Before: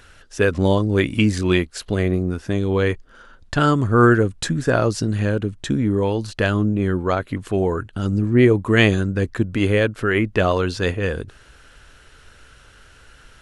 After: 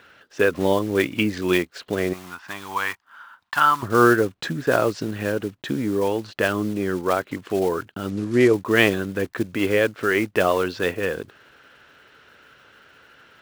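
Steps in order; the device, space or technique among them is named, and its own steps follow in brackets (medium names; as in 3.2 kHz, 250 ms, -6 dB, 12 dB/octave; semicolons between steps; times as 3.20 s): dynamic bell 220 Hz, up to -4 dB, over -31 dBFS, Q 1.9; early digital voice recorder (band-pass 200–3600 Hz; block-companded coder 5-bit); 2.13–3.83 s: resonant low shelf 670 Hz -12.5 dB, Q 3; 8.10–8.54 s: low-pass 8.4 kHz 12 dB/octave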